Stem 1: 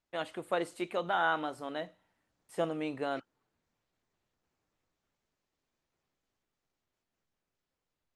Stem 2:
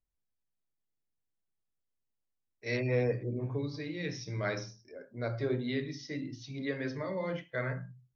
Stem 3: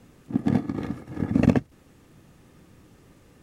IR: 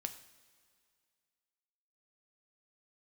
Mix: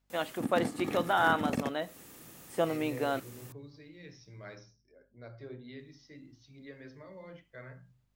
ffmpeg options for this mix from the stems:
-filter_complex "[0:a]volume=3dB,asplit=3[link_01][link_02][link_03];[link_01]atrim=end=4.56,asetpts=PTS-STARTPTS,afade=type=out:start_time=4.556:duration=0.004:curve=hsin[link_04];[link_02]atrim=start=4.56:end=5.79,asetpts=PTS-STARTPTS,volume=0[link_05];[link_03]atrim=start=5.79,asetpts=PTS-STARTPTS,afade=type=in:duration=0.004:curve=hsin[link_06];[link_04][link_05][link_06]concat=n=3:v=0:a=1[link_07];[1:a]aeval=exprs='val(0)+0.000794*(sin(2*PI*50*n/s)+sin(2*PI*2*50*n/s)/2+sin(2*PI*3*50*n/s)/3+sin(2*PI*4*50*n/s)/4+sin(2*PI*5*50*n/s)/5)':channel_layout=same,volume=-13.5dB[link_08];[2:a]acompressor=threshold=-31dB:ratio=3,aemphasis=mode=production:type=bsi,adelay=100,volume=3dB[link_09];[link_07][link_08][link_09]amix=inputs=3:normalize=0"

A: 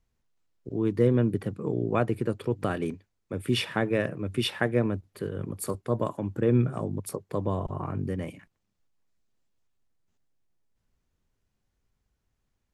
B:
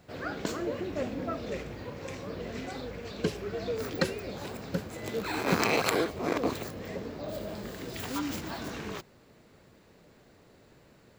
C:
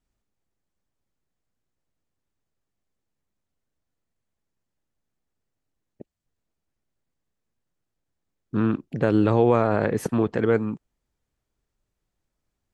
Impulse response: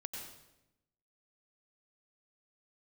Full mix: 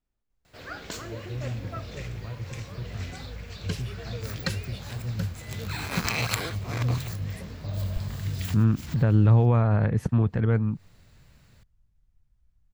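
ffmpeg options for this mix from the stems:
-filter_complex "[0:a]acrossover=split=120[link_01][link_02];[link_02]acompressor=threshold=-44dB:ratio=2[link_03];[link_01][link_03]amix=inputs=2:normalize=0,adelay=300,volume=-9dB[link_04];[1:a]tiltshelf=frequency=1200:gain=-5,adelay=450,volume=-2dB[link_05];[2:a]highshelf=frequency=6500:gain=-11,volume=-5dB,asplit=2[link_06][link_07];[link_07]apad=whole_len=512970[link_08];[link_05][link_08]sidechaincompress=threshold=-42dB:ratio=6:attack=11:release=111[link_09];[link_04][link_09][link_06]amix=inputs=3:normalize=0,asubboost=boost=10.5:cutoff=110"

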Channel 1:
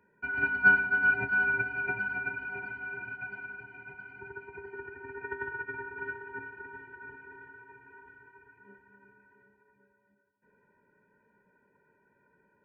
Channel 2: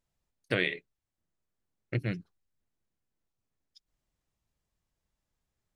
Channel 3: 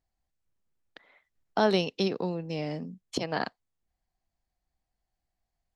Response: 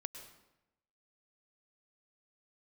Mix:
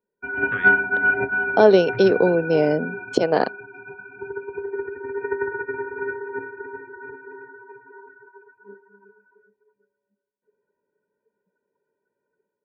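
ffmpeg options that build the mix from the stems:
-filter_complex "[0:a]volume=-4.5dB,asplit=2[link_01][link_02];[link_02]volume=-11.5dB[link_03];[1:a]firequalizer=gain_entry='entry(110,0);entry(280,-14);entry(530,-25);entry(1200,10);entry(2100,-6);entry(6600,-9)':delay=0.05:min_phase=1,volume=-9.5dB[link_04];[2:a]volume=-1.5dB[link_05];[3:a]atrim=start_sample=2205[link_06];[link_03][link_06]afir=irnorm=-1:irlink=0[link_07];[link_01][link_04][link_05][link_07]amix=inputs=4:normalize=0,afftdn=noise_reduction=22:noise_floor=-53,equalizer=frequency=470:width_type=o:width=1.6:gain=14.5,dynaudnorm=framelen=120:gausssize=5:maxgain=6dB"

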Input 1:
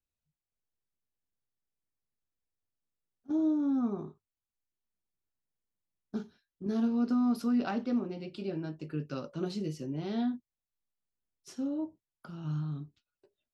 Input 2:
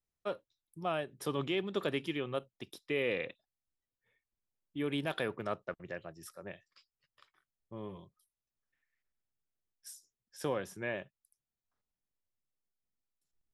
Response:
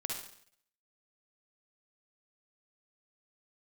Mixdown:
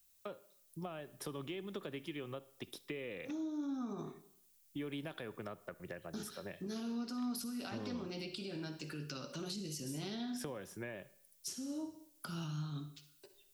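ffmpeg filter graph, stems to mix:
-filter_complex "[0:a]acompressor=threshold=-33dB:ratio=6,alimiter=level_in=15.5dB:limit=-24dB:level=0:latency=1:release=207,volume=-15.5dB,crystalizer=i=9.5:c=0,volume=0.5dB,asplit=2[link_01][link_02];[link_02]volume=-6dB[link_03];[1:a]acompressor=threshold=-45dB:ratio=3,volume=2.5dB,asplit=2[link_04][link_05];[link_05]volume=-18dB[link_06];[2:a]atrim=start_sample=2205[link_07];[link_03][link_06]amix=inputs=2:normalize=0[link_08];[link_08][link_07]afir=irnorm=-1:irlink=0[link_09];[link_01][link_04][link_09]amix=inputs=3:normalize=0,acrossover=split=330[link_10][link_11];[link_11]acompressor=threshold=-43dB:ratio=6[link_12];[link_10][link_12]amix=inputs=2:normalize=0"

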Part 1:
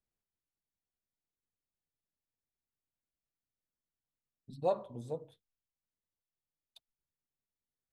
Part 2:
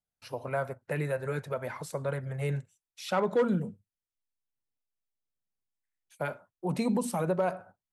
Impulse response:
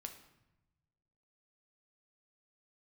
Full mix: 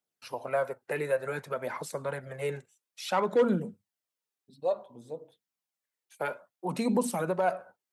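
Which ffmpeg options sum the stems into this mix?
-filter_complex "[0:a]volume=-0.5dB[link_01];[1:a]volume=1.5dB[link_02];[link_01][link_02]amix=inputs=2:normalize=0,highpass=250,aphaser=in_gain=1:out_gain=1:delay=2.6:decay=0.36:speed=0.57:type=triangular"

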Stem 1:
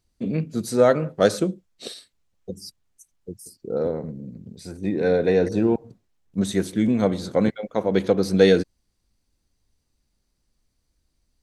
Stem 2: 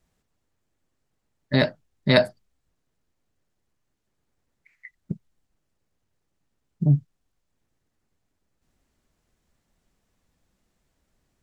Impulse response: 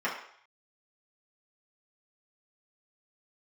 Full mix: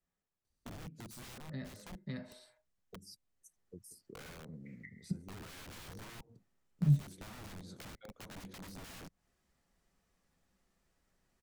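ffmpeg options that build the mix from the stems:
-filter_complex "[0:a]highshelf=frequency=4900:gain=4.5,alimiter=limit=-9dB:level=0:latency=1:release=465,aeval=exprs='(mod(13.3*val(0)+1,2)-1)/13.3':channel_layout=same,adelay=450,volume=-14dB[link_01];[1:a]volume=-7dB,afade=type=in:start_time=3.21:duration=0.66:silence=0.266073,asplit=2[link_02][link_03];[link_03]volume=-10dB[link_04];[2:a]atrim=start_sample=2205[link_05];[link_04][link_05]afir=irnorm=-1:irlink=0[link_06];[link_01][link_02][link_06]amix=inputs=3:normalize=0,acrossover=split=220[link_07][link_08];[link_08]acompressor=threshold=-50dB:ratio=6[link_09];[link_07][link_09]amix=inputs=2:normalize=0"

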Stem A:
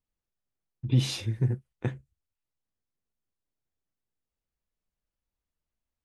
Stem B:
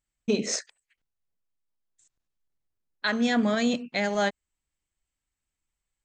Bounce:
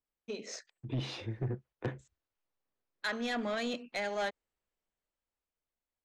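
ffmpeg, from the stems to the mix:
ffmpeg -i stem1.wav -i stem2.wav -filter_complex "[0:a]lowpass=frequency=1200:poles=1,volume=0dB,asplit=2[link_01][link_02];[1:a]volume=-6dB[link_03];[link_02]apad=whole_len=266756[link_04];[link_03][link_04]sidechaingate=range=-6dB:threshold=-50dB:ratio=16:detection=peak[link_05];[link_01][link_05]amix=inputs=2:normalize=0,acrossover=split=300 6600:gain=0.251 1 0.2[link_06][link_07][link_08];[link_06][link_07][link_08]amix=inputs=3:normalize=0,dynaudnorm=framelen=230:gausssize=13:maxgain=7dB,asoftclip=type=tanh:threshold=-27.5dB" out.wav

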